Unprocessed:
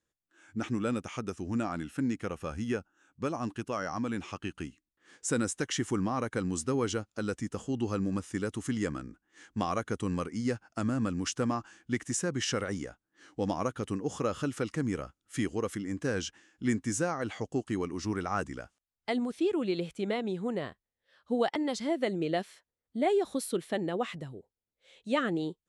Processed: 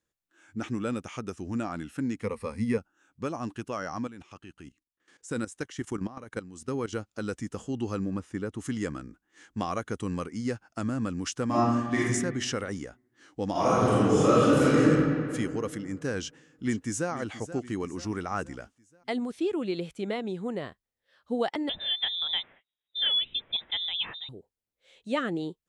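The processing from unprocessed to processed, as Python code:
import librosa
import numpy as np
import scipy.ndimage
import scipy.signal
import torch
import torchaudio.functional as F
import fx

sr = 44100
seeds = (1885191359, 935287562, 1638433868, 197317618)

y = fx.ripple_eq(x, sr, per_octave=0.93, db=14, at=(2.23, 2.78))
y = fx.level_steps(y, sr, step_db=15, at=(4.07, 6.93))
y = fx.high_shelf(y, sr, hz=fx.line((8.04, 4600.0), (8.58, 2500.0)), db=-11.5, at=(8.04, 8.58), fade=0.02)
y = fx.reverb_throw(y, sr, start_s=11.46, length_s=0.58, rt60_s=1.3, drr_db=-8.5)
y = fx.reverb_throw(y, sr, start_s=13.51, length_s=1.33, rt60_s=2.3, drr_db=-11.5)
y = fx.echo_throw(y, sr, start_s=16.19, length_s=0.92, ms=480, feedback_pct=50, wet_db=-13.5)
y = fx.freq_invert(y, sr, carrier_hz=3800, at=(21.69, 24.29))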